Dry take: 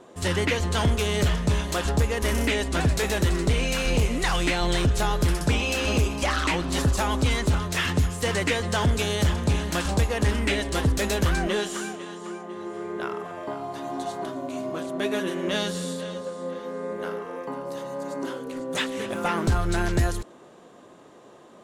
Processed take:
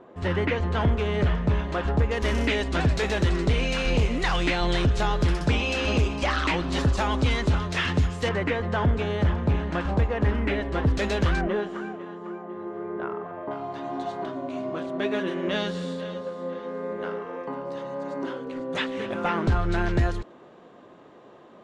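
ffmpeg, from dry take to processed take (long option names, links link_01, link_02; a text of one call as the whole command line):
ffmpeg -i in.wav -af "asetnsamples=nb_out_samples=441:pad=0,asendcmd='2.11 lowpass f 4500;8.29 lowpass f 1900;10.87 lowpass f 3800;11.41 lowpass f 1500;13.51 lowpass f 3400',lowpass=2100" out.wav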